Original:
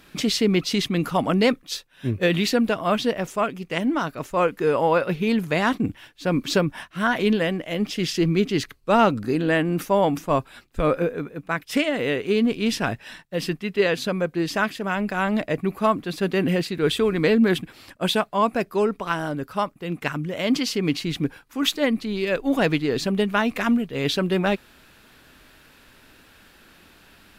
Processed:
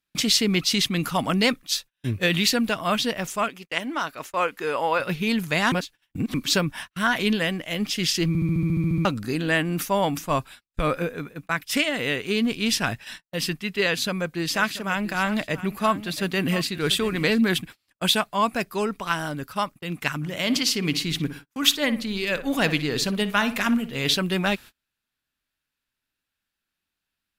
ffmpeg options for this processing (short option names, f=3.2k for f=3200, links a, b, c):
-filter_complex "[0:a]asettb=1/sr,asplit=3[a][b][c];[a]atrim=end=3.484[d];[b]atrim=start=3.48:end=5,asetpts=PTS-STARTPTS,afade=t=in:d=0.004:c=qsin,afade=t=out:st=1.516:d=0.004:c=qsin,bass=f=250:g=-13,treble=f=4k:g=-4[e];[c]atrim=start=4.996[f];[d][e]acrossfade=d=0.004:c1=hsin:c2=qsin[g];[g][f]acrossfade=d=0.004:c1=qsin:c2=hsin,asplit=3[h][i][j];[h]afade=t=out:st=14.54:d=0.02[k];[i]aecho=1:1:685:0.178,afade=t=in:st=14.54:d=0.02,afade=t=out:st=17.4:d=0.02[l];[j]afade=t=in:st=17.4:d=0.02[m];[k][l][m]amix=inputs=3:normalize=0,asplit=3[n][o][p];[n]afade=t=out:st=20.21:d=0.02[q];[o]asplit=2[r][s];[s]adelay=60,lowpass=f=1.9k:p=1,volume=-11dB,asplit=2[t][u];[u]adelay=60,lowpass=f=1.9k:p=1,volume=0.39,asplit=2[v][w];[w]adelay=60,lowpass=f=1.9k:p=1,volume=0.39,asplit=2[x][y];[y]adelay=60,lowpass=f=1.9k:p=1,volume=0.39[z];[r][t][v][x][z]amix=inputs=5:normalize=0,afade=t=in:st=20.21:d=0.02,afade=t=out:st=24.16:d=0.02[aa];[p]afade=t=in:st=24.16:d=0.02[ab];[q][aa][ab]amix=inputs=3:normalize=0,asplit=14[ac][ad][ae][af][ag][ah][ai][aj][ak][al][am][an][ao][ap];[ac]atrim=end=5.722[aq];[ad]atrim=start=5.718:end=6.342,asetpts=PTS-STARTPTS,areverse[ar];[ae]atrim=start=6.338:end=8.352[as];[af]atrim=start=8.278:end=8.352[at];[ag]atrim=start=8.278:end=8.352[au];[ah]atrim=start=8.278:end=8.352[av];[ai]atrim=start=8.278:end=8.352[aw];[aj]atrim=start=8.278:end=8.352[ax];[ak]atrim=start=8.278:end=8.352[ay];[al]atrim=start=8.278:end=8.352[az];[am]atrim=start=8.278:end=8.352[ba];[an]atrim=start=8.278:end=8.352[bb];[ao]atrim=start=8.278:end=8.352[bc];[ap]atrim=start=9.048[bd];[aq][ar]acrossfade=d=0.004:c1=hsin:c2=hsin[be];[be][as]acrossfade=d=0.004:c1=hsin:c2=hsin[bf];[bf][at]acrossfade=d=0.004:c1=hsin:c2=hsin[bg];[bg][au]acrossfade=d=0.004:c1=hsin:c2=hsin[bh];[bh][av]acrossfade=d=0.004:c1=hsin:c2=hsin[bi];[bi][aw]acrossfade=d=0.004:c1=hsin:c2=hsin[bj];[bj][ax]acrossfade=d=0.004:c1=hsin:c2=hsin[bk];[bk][ay]acrossfade=d=0.004:c1=hsin:c2=hsin[bl];[bl][az]acrossfade=d=0.004:c1=hsin:c2=hsin[bm];[bm][ba]acrossfade=d=0.004:c1=hsin:c2=hsin[bn];[bn][bb]acrossfade=d=0.004:c1=hsin:c2=hsin[bo];[bo][bc]acrossfade=d=0.004:c1=hsin:c2=hsin[bp];[bp][bd]acrossfade=d=0.004:c1=hsin:c2=hsin,highshelf=f=2.9k:g=7.5,agate=range=-34dB:threshold=-37dB:ratio=16:detection=peak,equalizer=f=430:t=o:w=1.6:g=-6"